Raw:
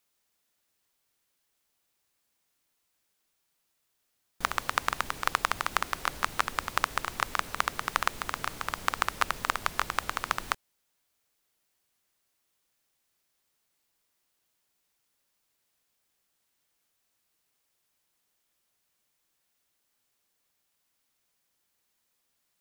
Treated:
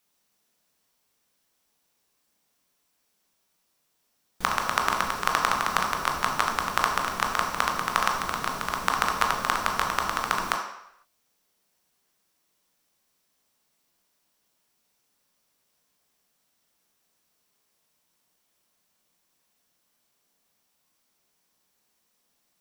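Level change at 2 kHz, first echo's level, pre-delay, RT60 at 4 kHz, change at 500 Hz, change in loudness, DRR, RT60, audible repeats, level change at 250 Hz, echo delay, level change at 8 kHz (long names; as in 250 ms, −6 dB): +3.5 dB, no echo audible, 15 ms, 0.70 s, +7.0 dB, +5.0 dB, 0.5 dB, 0.75 s, no echo audible, +8.0 dB, no echo audible, +4.5 dB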